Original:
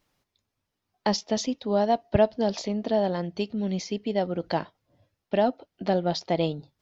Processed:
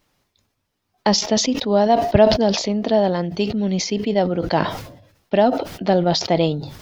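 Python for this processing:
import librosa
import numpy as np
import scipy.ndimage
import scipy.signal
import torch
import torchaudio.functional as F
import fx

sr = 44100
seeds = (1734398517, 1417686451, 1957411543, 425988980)

y = fx.sustainer(x, sr, db_per_s=73.0)
y = y * librosa.db_to_amplitude(7.0)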